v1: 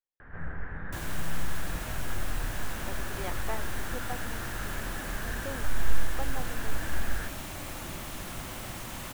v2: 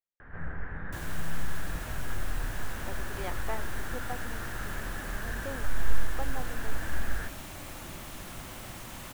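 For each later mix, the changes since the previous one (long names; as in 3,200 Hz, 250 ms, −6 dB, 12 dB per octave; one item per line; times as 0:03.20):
second sound −3.5 dB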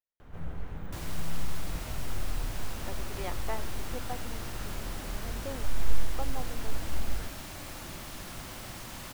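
first sound: remove low-pass with resonance 1,700 Hz, resonance Q 7.3
second sound: add parametric band 4,800 Hz +4.5 dB 0.61 octaves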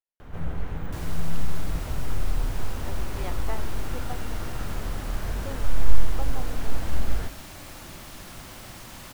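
first sound +7.5 dB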